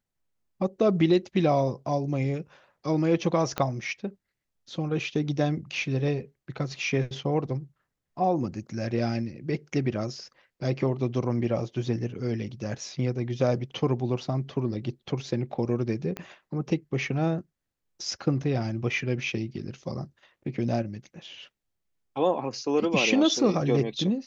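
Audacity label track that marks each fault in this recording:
3.580000	3.580000	click −13 dBFS
16.170000	16.170000	click −19 dBFS

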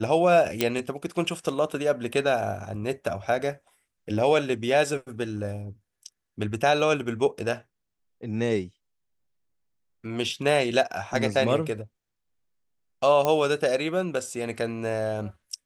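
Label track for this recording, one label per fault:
0.610000	0.610000	click −7 dBFS
13.250000	13.250000	click −11 dBFS

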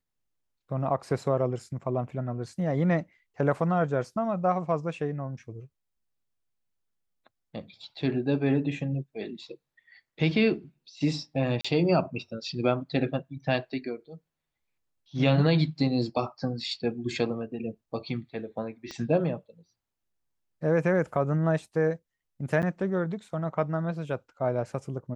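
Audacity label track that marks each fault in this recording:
11.610000	11.640000	drop-out 35 ms
18.910000	18.910000	click −24 dBFS
22.620000	22.630000	drop-out 8.5 ms

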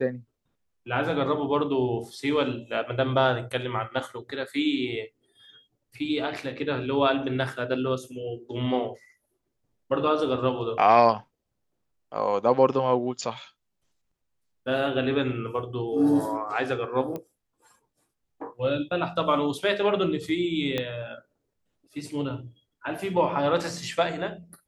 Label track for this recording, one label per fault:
17.160000	17.160000	click −21 dBFS
20.780000	20.780000	click −14 dBFS

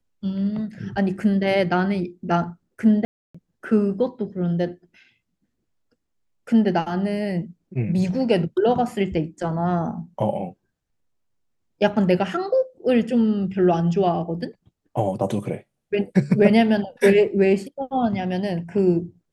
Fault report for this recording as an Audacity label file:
3.050000	3.350000	drop-out 295 ms

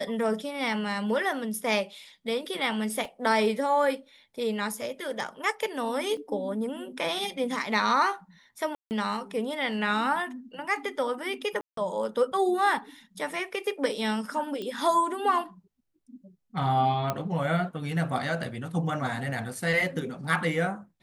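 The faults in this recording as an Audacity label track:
3.050000	3.050000	drop-out 2.7 ms
6.170000	6.170000	drop-out 3.6 ms
8.750000	8.910000	drop-out 159 ms
11.610000	11.770000	drop-out 163 ms
14.620000	14.620000	click −23 dBFS
17.100000	17.100000	click −13 dBFS

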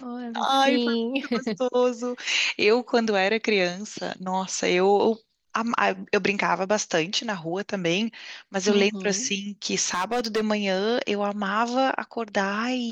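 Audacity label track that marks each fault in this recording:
9.880000	10.410000	clipping −20 dBFS

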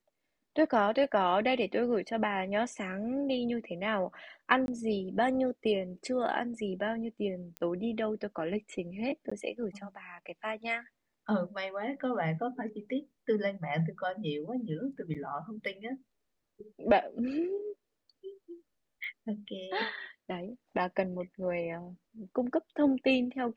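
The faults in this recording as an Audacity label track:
4.660000	4.680000	drop-out 21 ms
7.570000	7.570000	click −24 dBFS
9.300000	9.310000	drop-out 15 ms
15.140000	15.150000	drop-out 7 ms
19.040000	19.040000	click −31 dBFS

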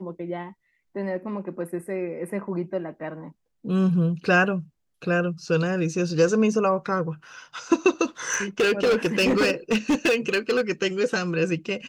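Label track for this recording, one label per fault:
8.320000	10.610000	clipping −16.5 dBFS

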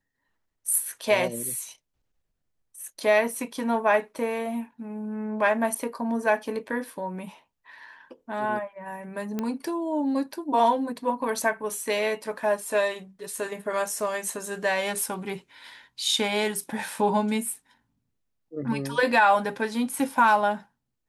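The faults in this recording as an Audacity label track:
9.390000	9.390000	click −16 dBFS

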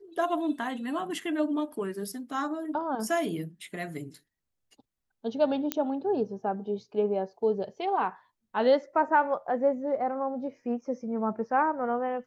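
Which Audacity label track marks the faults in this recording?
5.720000	5.720000	click −11 dBFS

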